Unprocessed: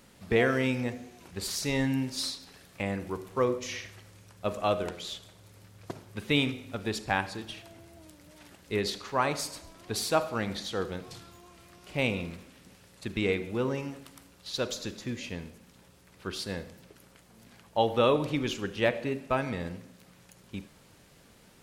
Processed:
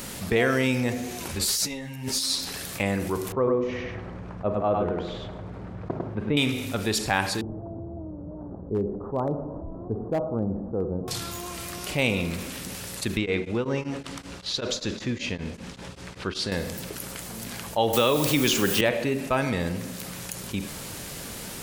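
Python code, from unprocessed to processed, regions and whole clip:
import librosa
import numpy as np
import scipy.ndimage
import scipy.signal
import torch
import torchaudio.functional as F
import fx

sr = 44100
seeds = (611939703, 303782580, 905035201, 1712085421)

y = fx.chain(x, sr, fx.over_compress(threshold_db=-36.0, ratio=-0.5),
    fx.ensemble(), at=(1.28, 2.41))
y = fx.chain(y, sr, fx.lowpass(hz=1000.0, slope=12),
    fx.echo_single(ms=101, db=-3.5), at=(3.32, 6.37))
y = fx.chain(y, sr, fx.gaussian_blur(sigma=12.0),
    fx.clip_hard(threshold_db=-24.5), at=(7.41, 11.08))
y = fx.chain(y, sr, fx.air_absorb(metres=100.0),
    fx.tremolo_abs(hz=5.2), at=(13.17, 16.52))
y = fx.chain(y, sr, fx.high_shelf(hz=3700.0, db=8.5),
    fx.quant_dither(seeds[0], bits=8, dither='triangular'),
    fx.band_squash(depth_pct=100), at=(17.93, 18.81))
y = fx.high_shelf(y, sr, hz=5800.0, db=9.5)
y = fx.env_flatten(y, sr, amount_pct=50)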